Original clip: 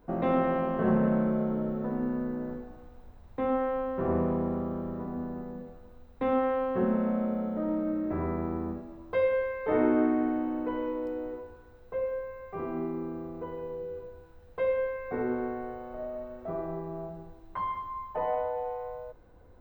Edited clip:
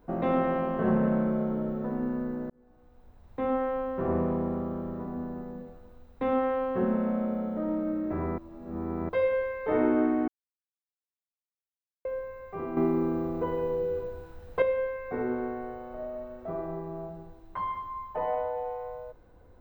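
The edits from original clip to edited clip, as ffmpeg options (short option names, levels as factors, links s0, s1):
-filter_complex "[0:a]asplit=8[s0][s1][s2][s3][s4][s5][s6][s7];[s0]atrim=end=2.5,asetpts=PTS-STARTPTS,afade=t=out:st=2.496:d=0.004:c=hsin[s8];[s1]atrim=start=2.5:end=8.382,asetpts=PTS-STARTPTS,afade=t=in:d=0.95[s9];[s2]atrim=start=8.378:end=9.092,asetpts=PTS-STARTPTS,areverse[s10];[s3]atrim=start=9.088:end=10.28,asetpts=PTS-STARTPTS,afade=t=out:st=1.188:d=0.004:c=hsin[s11];[s4]atrim=start=10.28:end=12.05,asetpts=PTS-STARTPTS,volume=0[s12];[s5]atrim=start=12.05:end=12.772,asetpts=PTS-STARTPTS,afade=t=in:d=0.004:c=hsin[s13];[s6]atrim=start=12.768:end=14.622,asetpts=PTS-STARTPTS,volume=2.51[s14];[s7]atrim=start=14.618[s15];[s8][s9]concat=n=2:v=0:a=1[s16];[s16][s10]acrossfade=d=0.004:c1=hsin:c2=hsin[s17];[s11][s12][s13]concat=n=3:v=0:a=1[s18];[s17][s18]acrossfade=d=0.004:c1=hsin:c2=hsin[s19];[s19][s14]acrossfade=d=0.004:c1=hsin:c2=hsin[s20];[s20][s15]acrossfade=d=0.004:c1=hsin:c2=hsin"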